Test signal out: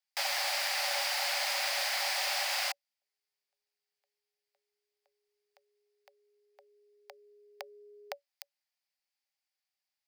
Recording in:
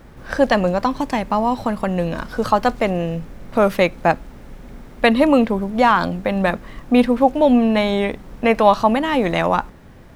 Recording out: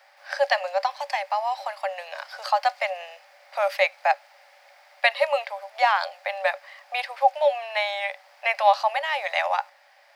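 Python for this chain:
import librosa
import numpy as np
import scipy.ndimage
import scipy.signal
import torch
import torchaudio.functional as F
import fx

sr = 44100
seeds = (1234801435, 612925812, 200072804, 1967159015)

y = scipy.signal.sosfilt(scipy.signal.cheby1(6, 9, 550.0, 'highpass', fs=sr, output='sos'), x)
y = fx.peak_eq(y, sr, hz=4800.0, db=11.5, octaves=0.39)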